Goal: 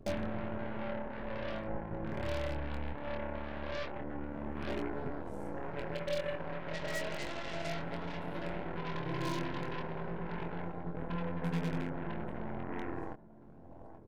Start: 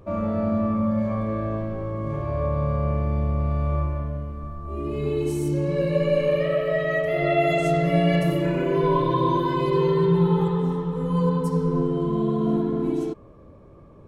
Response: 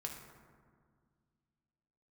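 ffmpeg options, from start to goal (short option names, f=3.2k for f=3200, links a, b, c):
-filter_complex "[0:a]afwtdn=0.0355,asettb=1/sr,asplit=3[a][b][c];[a]atrim=end=2.934[d];[b]atrim=start=2.93:end=5.06,asetpts=PTS-STARTPTS,afade=t=in:d=0.004:c=qsin,afade=t=out:st=2.126:d=0.004:c=qsin,highpass=210[e];[c]atrim=start=5.056[f];[d][e]acrossfade=d=0.004:c1=hsin:c2=qsin[g];[g][f]acrossfade=d=0.004:c1=qsin:c2=hsin,acompressor=threshold=-44dB:ratio=8,aecho=1:1:829|1658|2487:0.237|0.0806|0.0274,aphaser=in_gain=1:out_gain=1:delay=2.4:decay=0.41:speed=0.43:type=triangular,aeval=exprs='0.0178*(cos(1*acos(clip(val(0)/0.0178,-1,1)))-cos(1*PI/2))+0.00398*(cos(6*acos(clip(val(0)/0.0178,-1,1)))-cos(6*PI/2))+0.00447*(cos(7*acos(clip(val(0)/0.0178,-1,1)))-cos(7*PI/2))':c=same,bandreject=f=1.2k:w=6.9,asplit=2[h][i];[i]adelay=24,volume=-5dB[j];[h][j]amix=inputs=2:normalize=0,volume=3.5dB"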